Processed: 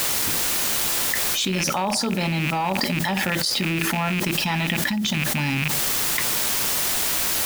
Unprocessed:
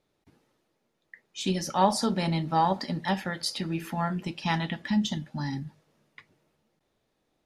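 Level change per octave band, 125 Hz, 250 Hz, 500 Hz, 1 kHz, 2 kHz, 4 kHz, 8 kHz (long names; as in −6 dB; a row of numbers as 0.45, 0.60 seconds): +5.5, +4.0, +3.5, +1.5, +13.5, +12.5, +18.5 decibels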